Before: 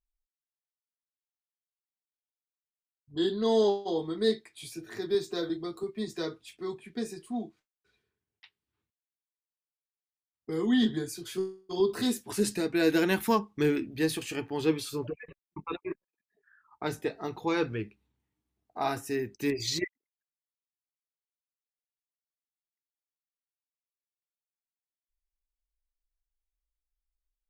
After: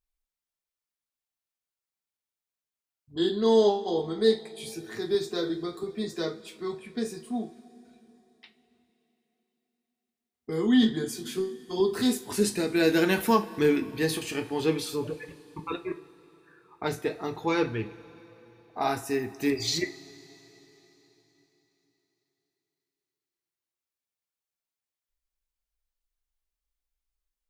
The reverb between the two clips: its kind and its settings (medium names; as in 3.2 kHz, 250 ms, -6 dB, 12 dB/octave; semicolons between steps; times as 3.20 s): two-slope reverb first 0.29 s, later 4 s, from -21 dB, DRR 6 dB; trim +2 dB